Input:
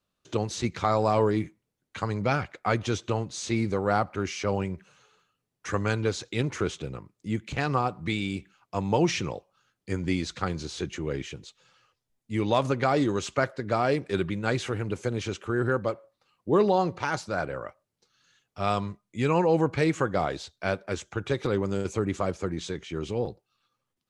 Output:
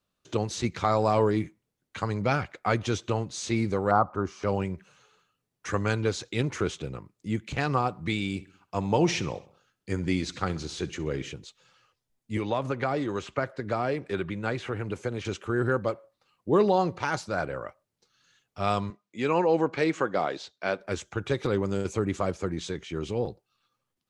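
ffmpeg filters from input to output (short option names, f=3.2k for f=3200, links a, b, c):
-filter_complex "[0:a]asettb=1/sr,asplit=3[a][b][c];[a]atrim=end=3.914[d];[b]atrim=start=3.91:end=4.43,asetpts=PTS-STARTPTS,afade=t=in:d=0.004:c=qsin,afade=t=out:st=0.516:d=0.004:c=qsin,highshelf=f=1.6k:t=q:w=3:g=-11[e];[c]atrim=start=4.426[f];[d][e]acrossfade=d=0.004:c1=hsin:c2=qsin[g];[g][f]acrossfade=d=0.004:c1=qsin:c2=hsin,asettb=1/sr,asplit=3[h][i][j];[h]atrim=end=8.344[k];[i]atrim=start=8.34:end=11.32,asetpts=PTS-STARTPTS,afade=t=in:d=0.004:c=qsin,afade=t=out:st=2.976:d=0.004:c=qsin,aecho=1:1:65|130|195|260:0.119|0.0606|0.0309|0.0158,atrim=end_sample=131418[l];[j]atrim=start=11.316[m];[k][l]acrossfade=d=0.004:c1=hsin:c2=qsin[n];[n][m]acrossfade=d=0.004:c1=qsin:c2=hsin,asettb=1/sr,asplit=3[o][p][q];[o]atrim=end=12.374[r];[p]atrim=start=12.37:end=15.25,asetpts=PTS-STARTPTS,afade=t=in:d=0.004:c=qsin,afade=t=out:st=2.876:d=0.004:c=qsin,acrossover=split=480|3000[s][t][u];[s]acompressor=threshold=-30dB:ratio=4[v];[t]acompressor=threshold=-27dB:ratio=4[w];[u]acompressor=threshold=-53dB:ratio=4[x];[v][w][x]amix=inputs=3:normalize=0[y];[q]atrim=start=15.246[z];[r][y]acrossfade=d=0.004:c1=hsin:c2=qsin[aa];[aa][z]acrossfade=d=0.004:c1=qsin:c2=hsin,asettb=1/sr,asplit=3[ab][ac][ad];[ab]atrim=end=18.904[ae];[ac]atrim=start=18.9:end=20.8,asetpts=PTS-STARTPTS,afade=t=in:d=0.004:c=qsin,afade=t=out:st=1.896:d=0.004:c=qsin,highpass=230,lowpass=6.1k[af];[ad]atrim=start=20.796[ag];[ae][af]acrossfade=d=0.004:c1=hsin:c2=qsin[ah];[ah][ag]acrossfade=d=0.004:c1=qsin:c2=hsin"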